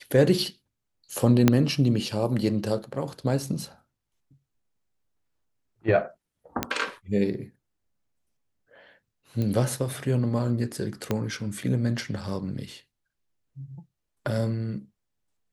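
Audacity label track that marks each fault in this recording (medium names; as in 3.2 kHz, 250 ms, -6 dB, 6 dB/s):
1.480000	1.480000	pop -4 dBFS
6.630000	6.630000	pop -8 dBFS
9.420000	9.420000	pop -18 dBFS
11.110000	11.110000	pop -12 dBFS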